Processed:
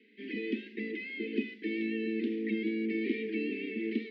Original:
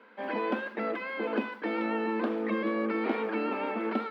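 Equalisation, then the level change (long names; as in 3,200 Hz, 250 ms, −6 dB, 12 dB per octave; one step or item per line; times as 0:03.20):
Chebyshev band-stop filter 430–1,900 Hz, order 5
high-frequency loss of the air 230 metres
high-shelf EQ 3,400 Hz +10.5 dB
0.0 dB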